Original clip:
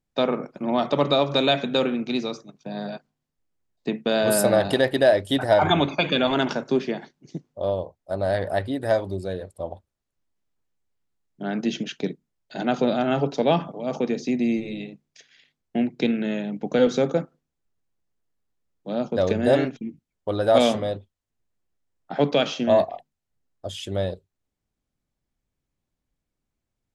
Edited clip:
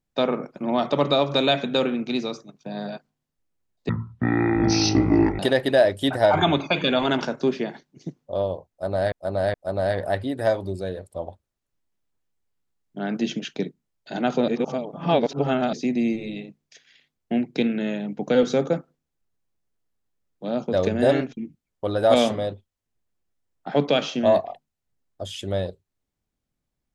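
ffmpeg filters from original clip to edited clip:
-filter_complex "[0:a]asplit=7[a][b][c][d][e][f][g];[a]atrim=end=3.894[h];[b]atrim=start=3.89:end=4.67,asetpts=PTS-STARTPTS,asetrate=22932,aresample=44100[i];[c]atrim=start=4.666:end=8.402[j];[d]atrim=start=7.978:end=8.402[k];[e]atrim=start=7.978:end=12.922[l];[f]atrim=start=12.918:end=14.172,asetpts=PTS-STARTPTS,areverse[m];[g]atrim=start=14.168[n];[h][i]acrossfade=d=0.004:c1=hsin:c2=hsin[o];[o][j]acrossfade=d=0.004:c1=hsin:c2=hsin[p];[p][k]acrossfade=d=0.004:c1=hsin:c2=hsin[q];[q][l]acrossfade=d=0.004:c1=hsin:c2=hsin[r];[r][m]acrossfade=d=0.004:c1=hsin:c2=hsin[s];[s][n]acrossfade=d=0.004:c1=hsin:c2=hsin"

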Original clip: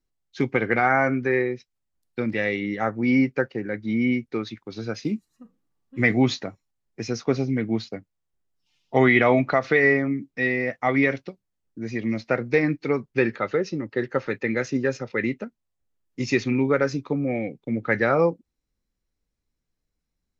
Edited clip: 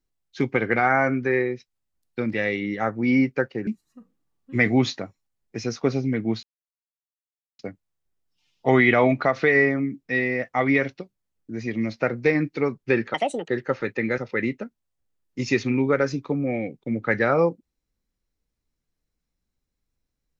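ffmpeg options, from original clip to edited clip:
-filter_complex "[0:a]asplit=6[a][b][c][d][e][f];[a]atrim=end=3.672[g];[b]atrim=start=5.108:end=7.87,asetpts=PTS-STARTPTS,afade=t=out:st=2.758:d=0.004:c=hsin,apad=pad_dur=1.16[h];[c]atrim=start=7.87:end=13.424,asetpts=PTS-STARTPTS,afade=t=in:d=0.004:c=hsin[i];[d]atrim=start=13.42:end=13.94,asetpts=PTS-STARTPTS,asetrate=67032,aresample=44100[j];[e]atrim=start=13.936:end=14.642[k];[f]atrim=start=14.988[l];[h][i]concat=n=2:v=0:a=1[m];[g][m]acrossfade=d=0.004:c1=hsin:c2=hsin[n];[n][j]acrossfade=d=0.004:c1=hsin:c2=hsin[o];[o][k]acrossfade=d=0.004:c1=hsin:c2=hsin[p];[p][l]acrossfade=d=0.004:c1=hsin:c2=hsin"

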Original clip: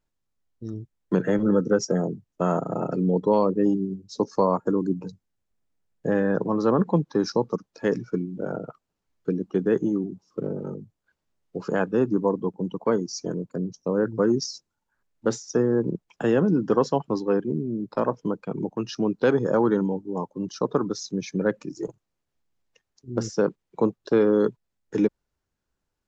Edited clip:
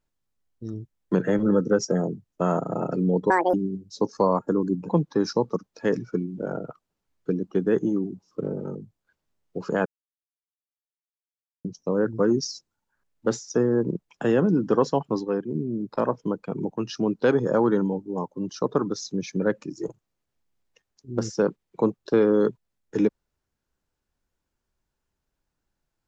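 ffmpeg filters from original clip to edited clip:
-filter_complex "[0:a]asplit=8[a][b][c][d][e][f][g][h];[a]atrim=end=3.304[i];[b]atrim=start=3.3:end=3.72,asetpts=PTS-STARTPTS,asetrate=78498,aresample=44100[j];[c]atrim=start=3.716:end=5.072[k];[d]atrim=start=6.878:end=11.85,asetpts=PTS-STARTPTS,afade=t=out:st=4.968:d=0.004:c=hsin[l];[e]atrim=start=11.85:end=13.64,asetpts=PTS-STARTPTS,volume=0[m];[f]atrim=start=13.64:end=17.242,asetpts=PTS-STARTPTS,afade=t=in:d=0.004:c=hsin[n];[g]atrim=start=17.238:end=17.542,asetpts=PTS-STARTPTS,volume=-3.5dB[o];[h]atrim=start=17.538[p];[i][j]acrossfade=d=0.004:c1=hsin:c2=hsin[q];[q][k]acrossfade=d=0.004:c1=hsin:c2=hsin[r];[l][m][n]concat=n=3:v=0:a=1[s];[r][s]acrossfade=d=0.004:c1=hsin:c2=hsin[t];[t][o]acrossfade=d=0.004:c1=hsin:c2=hsin[u];[u][p]acrossfade=d=0.004:c1=hsin:c2=hsin"

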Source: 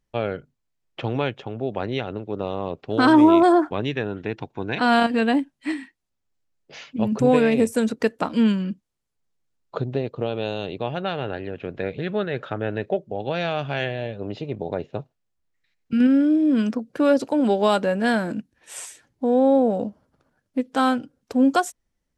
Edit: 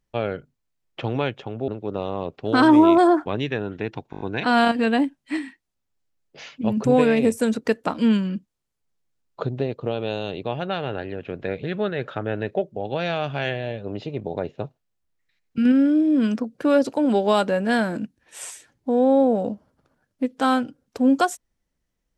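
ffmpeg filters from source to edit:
-filter_complex "[0:a]asplit=7[a][b][c][d][e][f][g];[a]atrim=end=1.682[h];[b]atrim=start=2.128:end=4.582[i];[c]atrim=start=4.558:end=4.582[j];[d]atrim=start=4.558:end=4.582[k];[e]atrim=start=4.558:end=4.582[l];[f]atrim=start=4.558:end=4.582[m];[g]atrim=start=4.558[n];[h][i]acrossfade=d=0.004:c1=hsin:c2=hsin[o];[o][j]acrossfade=d=0.004:c1=hsin:c2=hsin[p];[p][k]acrossfade=d=0.004:c1=hsin:c2=hsin[q];[q][l]acrossfade=d=0.004:c1=hsin:c2=hsin[r];[r][m]acrossfade=d=0.004:c1=hsin:c2=hsin[s];[s][n]acrossfade=d=0.004:c1=hsin:c2=hsin"

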